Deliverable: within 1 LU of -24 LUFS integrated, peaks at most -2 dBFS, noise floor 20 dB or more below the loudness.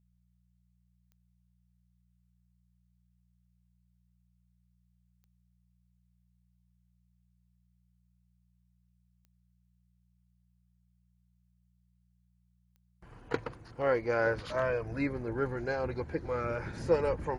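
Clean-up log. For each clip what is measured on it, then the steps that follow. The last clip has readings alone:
clicks found 4; hum 60 Hz; highest harmonic 180 Hz; hum level -67 dBFS; loudness -32.5 LUFS; peak level -14.0 dBFS; loudness target -24.0 LUFS
-> de-click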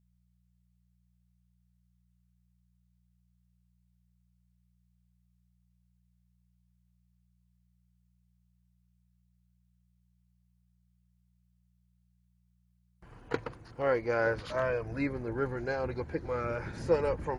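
clicks found 0; hum 60 Hz; highest harmonic 180 Hz; hum level -67 dBFS
-> de-hum 60 Hz, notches 3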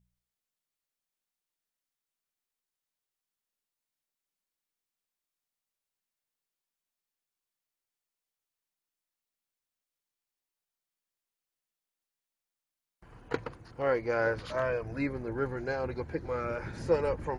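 hum not found; loudness -32.5 LUFS; peak level -14.0 dBFS; loudness target -24.0 LUFS
-> trim +8.5 dB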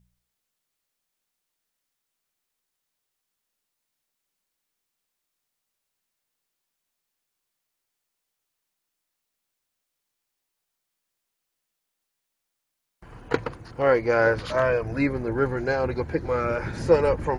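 loudness -24.0 LUFS; peak level -5.5 dBFS; noise floor -82 dBFS

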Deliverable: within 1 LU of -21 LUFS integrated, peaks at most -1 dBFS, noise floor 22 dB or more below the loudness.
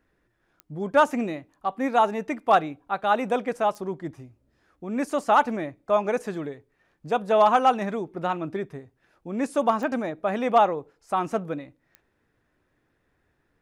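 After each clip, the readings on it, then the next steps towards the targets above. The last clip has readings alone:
clicks found 4; loudness -25.0 LUFS; peak level -8.5 dBFS; loudness target -21.0 LUFS
-> de-click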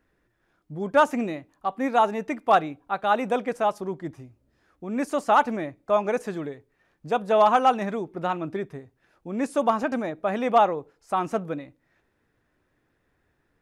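clicks found 0; loudness -25.0 LUFS; peak level -8.5 dBFS; loudness target -21.0 LUFS
-> trim +4 dB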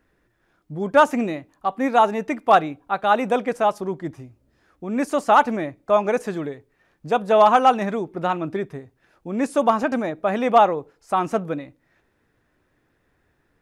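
loudness -21.0 LUFS; peak level -4.5 dBFS; noise floor -68 dBFS

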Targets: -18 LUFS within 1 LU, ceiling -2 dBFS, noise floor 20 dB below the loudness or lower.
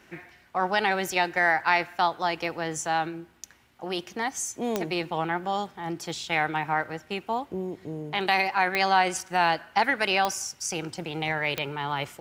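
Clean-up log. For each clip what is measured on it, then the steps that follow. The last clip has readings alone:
clicks found 4; loudness -27.0 LUFS; peak level -7.5 dBFS; loudness target -18.0 LUFS
-> de-click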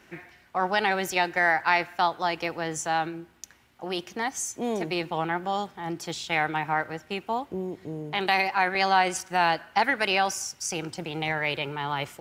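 clicks found 0; loudness -27.0 LUFS; peak level -7.5 dBFS; loudness target -18.0 LUFS
-> trim +9 dB; peak limiter -2 dBFS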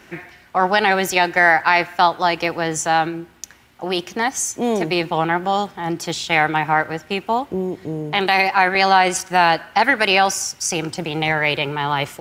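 loudness -18.5 LUFS; peak level -2.0 dBFS; noise floor -49 dBFS

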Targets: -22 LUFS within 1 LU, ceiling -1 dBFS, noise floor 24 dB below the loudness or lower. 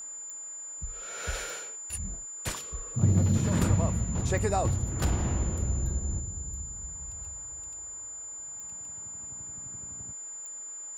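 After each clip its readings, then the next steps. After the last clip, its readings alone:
clicks found 5; steady tone 7.1 kHz; tone level -38 dBFS; loudness -31.5 LUFS; peak level -12.0 dBFS; loudness target -22.0 LUFS
-> de-click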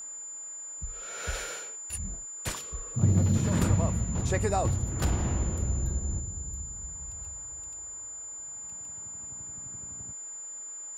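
clicks found 0; steady tone 7.1 kHz; tone level -38 dBFS
-> band-stop 7.1 kHz, Q 30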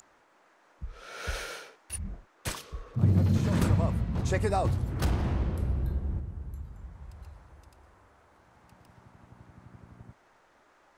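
steady tone not found; loudness -30.0 LUFS; peak level -12.5 dBFS; loudness target -22.0 LUFS
-> trim +8 dB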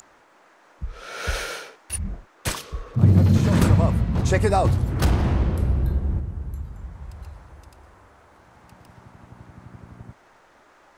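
loudness -22.0 LUFS; peak level -4.5 dBFS; noise floor -56 dBFS

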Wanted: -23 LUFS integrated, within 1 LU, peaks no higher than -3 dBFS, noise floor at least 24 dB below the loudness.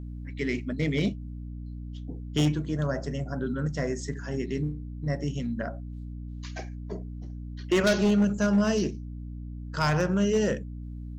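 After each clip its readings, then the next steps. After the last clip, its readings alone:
clipped samples 0.8%; clipping level -17.5 dBFS; hum 60 Hz; highest harmonic 300 Hz; hum level -35 dBFS; loudness -28.0 LUFS; peak level -17.5 dBFS; loudness target -23.0 LUFS
-> clip repair -17.5 dBFS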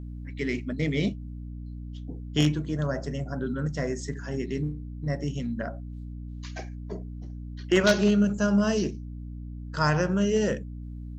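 clipped samples 0.0%; hum 60 Hz; highest harmonic 300 Hz; hum level -35 dBFS
-> de-hum 60 Hz, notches 5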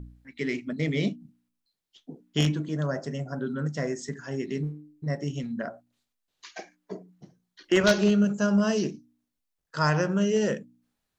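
hum not found; loudness -27.5 LUFS; peak level -8.5 dBFS; loudness target -23.0 LUFS
-> trim +4.5 dB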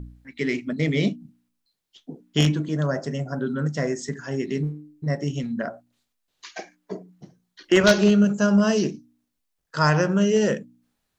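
loudness -23.0 LUFS; peak level -4.0 dBFS; noise floor -78 dBFS

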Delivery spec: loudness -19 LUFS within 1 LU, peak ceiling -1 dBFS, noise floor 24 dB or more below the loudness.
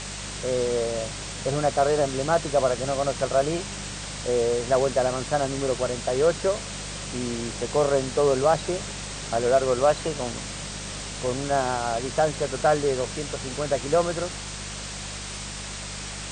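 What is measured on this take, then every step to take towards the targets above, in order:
hum 50 Hz; highest harmonic 200 Hz; hum level -37 dBFS; noise floor -35 dBFS; noise floor target -50 dBFS; loudness -25.5 LUFS; peak level -9.0 dBFS; loudness target -19.0 LUFS
-> de-hum 50 Hz, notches 4; noise print and reduce 15 dB; trim +6.5 dB

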